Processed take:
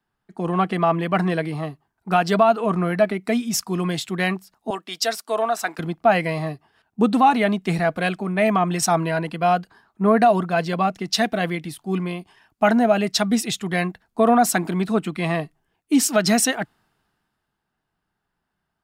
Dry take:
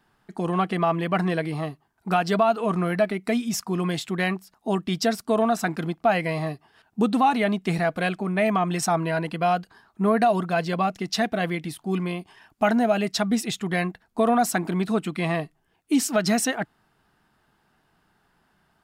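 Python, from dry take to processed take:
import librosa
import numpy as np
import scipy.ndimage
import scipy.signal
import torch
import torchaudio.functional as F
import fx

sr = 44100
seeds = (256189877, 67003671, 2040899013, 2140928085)

y = fx.highpass(x, sr, hz=530.0, slope=12, at=(4.7, 5.79))
y = fx.band_widen(y, sr, depth_pct=40)
y = y * 10.0 ** (3.0 / 20.0)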